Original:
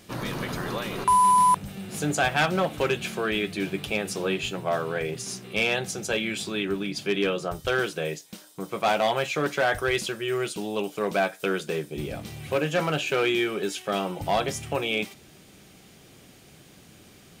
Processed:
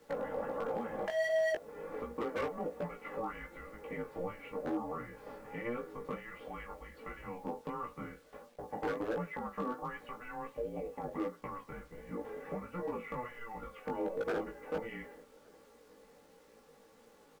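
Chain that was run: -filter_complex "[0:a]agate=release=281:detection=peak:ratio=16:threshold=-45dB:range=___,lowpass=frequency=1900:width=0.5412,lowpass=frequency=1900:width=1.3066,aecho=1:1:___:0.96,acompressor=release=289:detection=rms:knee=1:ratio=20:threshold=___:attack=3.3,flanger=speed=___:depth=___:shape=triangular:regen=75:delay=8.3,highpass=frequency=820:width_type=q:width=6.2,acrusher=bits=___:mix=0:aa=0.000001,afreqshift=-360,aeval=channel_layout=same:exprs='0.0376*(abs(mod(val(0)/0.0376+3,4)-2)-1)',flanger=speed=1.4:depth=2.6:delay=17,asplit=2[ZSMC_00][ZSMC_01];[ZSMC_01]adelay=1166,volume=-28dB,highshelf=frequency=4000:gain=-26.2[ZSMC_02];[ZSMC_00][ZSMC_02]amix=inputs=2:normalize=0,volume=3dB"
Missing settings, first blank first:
-6dB, 3.4, -30dB, 0.47, 4.4, 10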